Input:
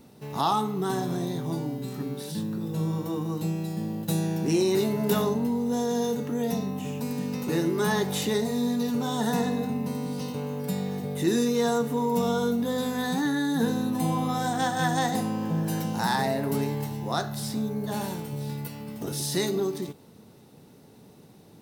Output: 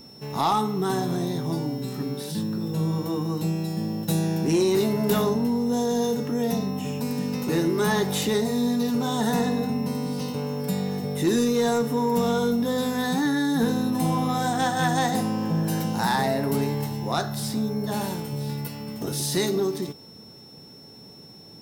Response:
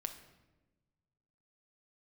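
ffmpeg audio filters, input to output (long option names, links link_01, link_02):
-af "aeval=exprs='val(0)+0.00316*sin(2*PI*5400*n/s)':channel_layout=same,aeval=exprs='0.299*(cos(1*acos(clip(val(0)/0.299,-1,1)))-cos(1*PI/2))+0.0376*(cos(5*acos(clip(val(0)/0.299,-1,1)))-cos(5*PI/2))+0.00841*(cos(7*acos(clip(val(0)/0.299,-1,1)))-cos(7*PI/2))':channel_layout=same"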